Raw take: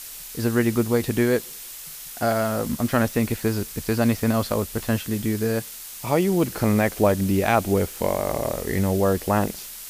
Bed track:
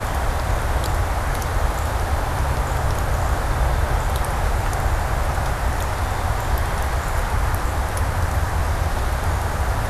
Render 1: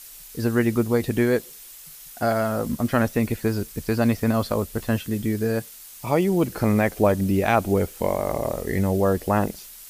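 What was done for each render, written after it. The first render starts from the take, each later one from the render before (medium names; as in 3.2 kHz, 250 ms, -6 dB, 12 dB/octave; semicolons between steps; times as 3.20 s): noise reduction 7 dB, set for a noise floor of -38 dBFS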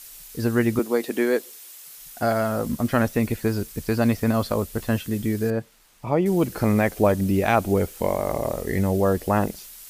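0.79–1.97 s: high-pass 250 Hz 24 dB/octave; 5.50–6.26 s: low-pass 1.3 kHz 6 dB/octave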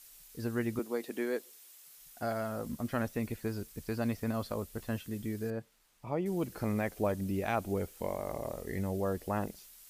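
trim -12.5 dB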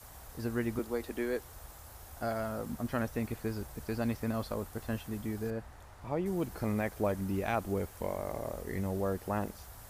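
add bed track -30 dB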